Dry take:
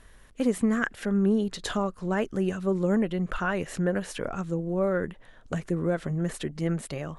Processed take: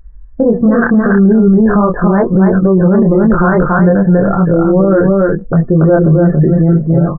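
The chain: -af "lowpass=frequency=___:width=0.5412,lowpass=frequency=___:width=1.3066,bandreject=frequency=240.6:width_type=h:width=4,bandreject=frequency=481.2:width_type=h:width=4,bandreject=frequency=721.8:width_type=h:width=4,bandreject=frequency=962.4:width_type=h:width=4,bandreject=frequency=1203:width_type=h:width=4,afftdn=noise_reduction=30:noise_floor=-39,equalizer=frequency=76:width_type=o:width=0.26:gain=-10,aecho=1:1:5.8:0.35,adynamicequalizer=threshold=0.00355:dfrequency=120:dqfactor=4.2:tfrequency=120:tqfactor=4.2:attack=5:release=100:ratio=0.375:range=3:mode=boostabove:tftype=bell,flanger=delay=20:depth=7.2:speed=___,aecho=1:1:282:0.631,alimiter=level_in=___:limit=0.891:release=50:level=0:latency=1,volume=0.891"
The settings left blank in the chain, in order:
1500, 1500, 0.4, 17.8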